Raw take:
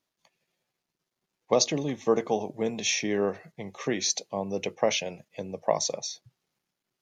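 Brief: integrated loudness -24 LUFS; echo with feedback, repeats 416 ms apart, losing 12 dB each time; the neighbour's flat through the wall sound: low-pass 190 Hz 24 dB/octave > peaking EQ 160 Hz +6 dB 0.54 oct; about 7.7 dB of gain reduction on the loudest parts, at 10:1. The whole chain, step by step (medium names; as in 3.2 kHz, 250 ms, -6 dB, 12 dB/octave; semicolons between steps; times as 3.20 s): compression 10:1, threshold -25 dBFS; low-pass 190 Hz 24 dB/octave; peaking EQ 160 Hz +6 dB 0.54 oct; feedback delay 416 ms, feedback 25%, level -12 dB; trim +19 dB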